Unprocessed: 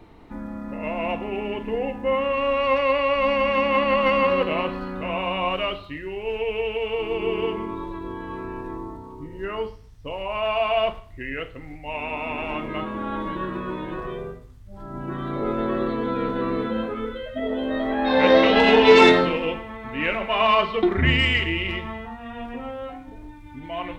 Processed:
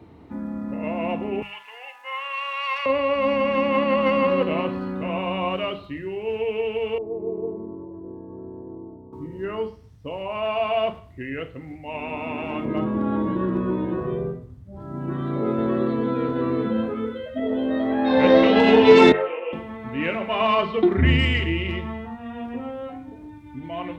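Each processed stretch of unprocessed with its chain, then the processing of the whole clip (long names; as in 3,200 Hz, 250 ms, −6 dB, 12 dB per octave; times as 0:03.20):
0:01.42–0:02.86: high-pass filter 1,000 Hz 24 dB per octave + high-shelf EQ 2,700 Hz +9 dB
0:06.98–0:09.13: Chebyshev low-pass filter 640 Hz, order 3 + low-shelf EQ 390 Hz −8.5 dB
0:12.65–0:14.82: tilt shelving filter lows +5 dB, about 1,200 Hz + hard clipping −15.5 dBFS
0:19.12–0:19.53: elliptic band-pass filter 440–2,700 Hz + micro pitch shift up and down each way 15 cents
whole clip: high-pass filter 71 Hz 24 dB per octave; low-shelf EQ 460 Hz +10 dB; mains-hum notches 50/100/150/200 Hz; level −4 dB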